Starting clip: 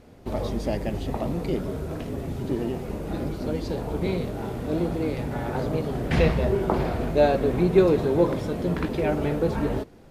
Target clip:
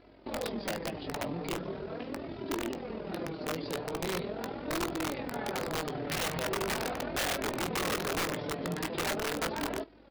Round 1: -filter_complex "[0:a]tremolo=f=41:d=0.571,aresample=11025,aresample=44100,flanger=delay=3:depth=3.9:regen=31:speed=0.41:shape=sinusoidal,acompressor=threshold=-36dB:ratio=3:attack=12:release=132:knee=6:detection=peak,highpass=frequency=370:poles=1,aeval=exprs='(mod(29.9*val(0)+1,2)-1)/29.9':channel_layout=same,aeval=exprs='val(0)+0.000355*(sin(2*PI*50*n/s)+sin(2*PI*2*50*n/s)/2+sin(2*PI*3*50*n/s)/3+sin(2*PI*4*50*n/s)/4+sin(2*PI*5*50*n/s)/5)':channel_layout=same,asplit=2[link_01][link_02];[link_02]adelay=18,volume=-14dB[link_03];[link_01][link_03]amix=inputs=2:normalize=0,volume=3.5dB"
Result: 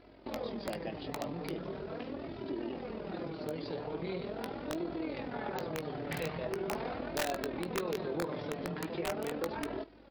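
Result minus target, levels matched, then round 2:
downward compressor: peak gain reduction +5.5 dB
-filter_complex "[0:a]tremolo=f=41:d=0.571,aresample=11025,aresample=44100,flanger=delay=3:depth=3.9:regen=31:speed=0.41:shape=sinusoidal,acompressor=threshold=-28dB:ratio=3:attack=12:release=132:knee=6:detection=peak,highpass=frequency=370:poles=1,aeval=exprs='(mod(29.9*val(0)+1,2)-1)/29.9':channel_layout=same,aeval=exprs='val(0)+0.000355*(sin(2*PI*50*n/s)+sin(2*PI*2*50*n/s)/2+sin(2*PI*3*50*n/s)/3+sin(2*PI*4*50*n/s)/4+sin(2*PI*5*50*n/s)/5)':channel_layout=same,asplit=2[link_01][link_02];[link_02]adelay=18,volume=-14dB[link_03];[link_01][link_03]amix=inputs=2:normalize=0,volume=3.5dB"

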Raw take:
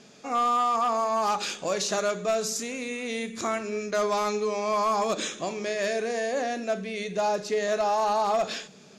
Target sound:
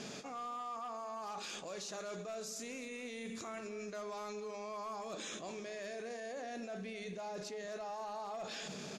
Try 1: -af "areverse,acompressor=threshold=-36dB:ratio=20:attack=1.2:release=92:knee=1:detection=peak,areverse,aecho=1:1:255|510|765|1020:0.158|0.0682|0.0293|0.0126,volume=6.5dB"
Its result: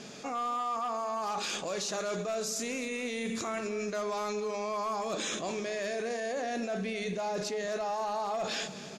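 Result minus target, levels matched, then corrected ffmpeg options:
downward compressor: peak gain reduction −10 dB
-af "areverse,acompressor=threshold=-46.5dB:ratio=20:attack=1.2:release=92:knee=1:detection=peak,areverse,aecho=1:1:255|510|765|1020:0.158|0.0682|0.0293|0.0126,volume=6.5dB"

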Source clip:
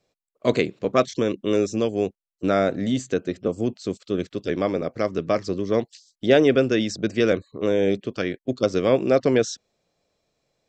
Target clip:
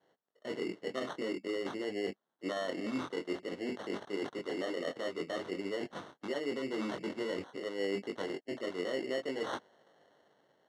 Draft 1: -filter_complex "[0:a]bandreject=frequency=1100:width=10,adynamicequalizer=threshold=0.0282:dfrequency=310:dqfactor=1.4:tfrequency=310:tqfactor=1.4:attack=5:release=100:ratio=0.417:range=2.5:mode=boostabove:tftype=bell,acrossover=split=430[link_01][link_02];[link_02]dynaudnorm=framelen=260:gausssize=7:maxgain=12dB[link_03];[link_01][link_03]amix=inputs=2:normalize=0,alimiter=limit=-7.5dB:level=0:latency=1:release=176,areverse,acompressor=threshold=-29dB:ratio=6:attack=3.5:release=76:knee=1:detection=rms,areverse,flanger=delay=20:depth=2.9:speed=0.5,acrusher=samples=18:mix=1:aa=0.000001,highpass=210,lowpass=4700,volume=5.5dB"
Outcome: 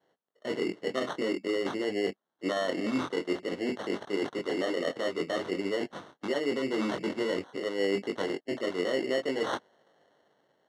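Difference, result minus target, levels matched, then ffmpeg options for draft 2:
downward compressor: peak gain reduction −6 dB
-filter_complex "[0:a]bandreject=frequency=1100:width=10,adynamicequalizer=threshold=0.0282:dfrequency=310:dqfactor=1.4:tfrequency=310:tqfactor=1.4:attack=5:release=100:ratio=0.417:range=2.5:mode=boostabove:tftype=bell,acrossover=split=430[link_01][link_02];[link_02]dynaudnorm=framelen=260:gausssize=7:maxgain=12dB[link_03];[link_01][link_03]amix=inputs=2:normalize=0,alimiter=limit=-7.5dB:level=0:latency=1:release=176,areverse,acompressor=threshold=-36.5dB:ratio=6:attack=3.5:release=76:knee=1:detection=rms,areverse,flanger=delay=20:depth=2.9:speed=0.5,acrusher=samples=18:mix=1:aa=0.000001,highpass=210,lowpass=4700,volume=5.5dB"

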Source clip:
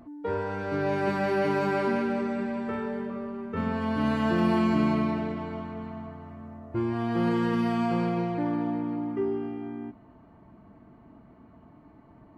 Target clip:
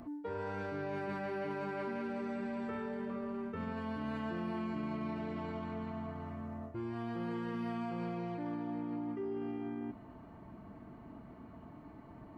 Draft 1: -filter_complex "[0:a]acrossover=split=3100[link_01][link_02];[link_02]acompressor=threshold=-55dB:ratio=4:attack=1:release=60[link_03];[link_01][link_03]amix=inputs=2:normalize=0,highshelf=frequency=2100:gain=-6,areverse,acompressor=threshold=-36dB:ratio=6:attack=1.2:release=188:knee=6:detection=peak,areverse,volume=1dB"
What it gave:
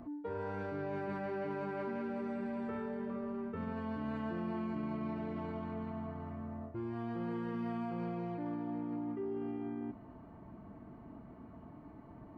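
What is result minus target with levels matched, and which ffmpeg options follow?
4,000 Hz band −5.5 dB
-filter_complex "[0:a]acrossover=split=3100[link_01][link_02];[link_02]acompressor=threshold=-55dB:ratio=4:attack=1:release=60[link_03];[link_01][link_03]amix=inputs=2:normalize=0,highshelf=frequency=2100:gain=2.5,areverse,acompressor=threshold=-36dB:ratio=6:attack=1.2:release=188:knee=6:detection=peak,areverse,volume=1dB"

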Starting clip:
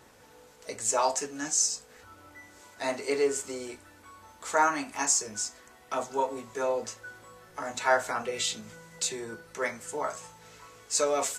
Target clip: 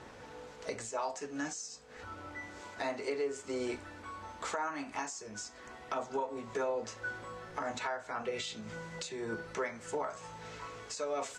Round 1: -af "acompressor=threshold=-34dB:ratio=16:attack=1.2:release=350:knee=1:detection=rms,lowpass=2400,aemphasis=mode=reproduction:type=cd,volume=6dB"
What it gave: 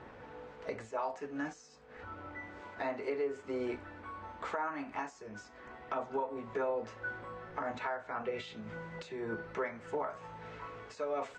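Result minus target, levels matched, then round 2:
8,000 Hz band −16.5 dB
-af "acompressor=threshold=-34dB:ratio=16:attack=1.2:release=350:knee=1:detection=rms,lowpass=7400,aemphasis=mode=reproduction:type=cd,volume=6dB"

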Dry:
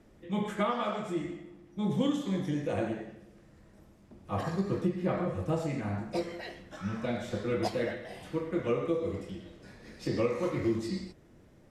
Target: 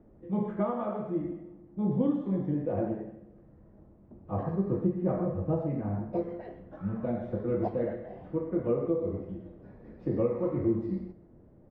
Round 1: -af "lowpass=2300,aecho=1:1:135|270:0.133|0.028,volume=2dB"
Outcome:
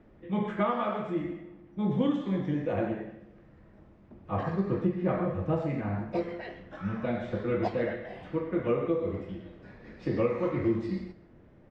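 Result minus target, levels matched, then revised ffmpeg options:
2,000 Hz band +12.0 dB
-af "lowpass=790,aecho=1:1:135|270:0.133|0.028,volume=2dB"

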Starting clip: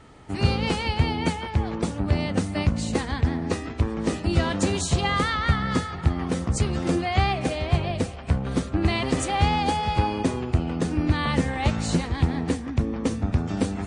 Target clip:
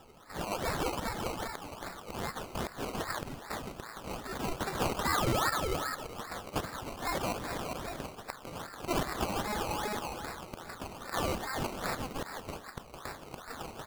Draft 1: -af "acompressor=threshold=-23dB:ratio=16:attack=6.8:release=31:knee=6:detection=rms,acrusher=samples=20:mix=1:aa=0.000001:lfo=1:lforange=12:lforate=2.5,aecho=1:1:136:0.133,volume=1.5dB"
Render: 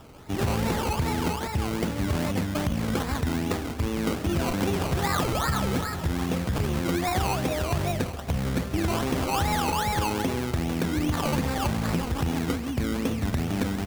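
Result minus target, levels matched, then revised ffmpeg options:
echo-to-direct +8.5 dB; 1,000 Hz band −3.0 dB
-af "acompressor=threshold=-23dB:ratio=16:attack=6.8:release=31:knee=6:detection=rms,highpass=frequency=1200:width=0.5412,highpass=frequency=1200:width=1.3066,acrusher=samples=20:mix=1:aa=0.000001:lfo=1:lforange=12:lforate=2.5,aecho=1:1:136:0.0501,volume=1.5dB"

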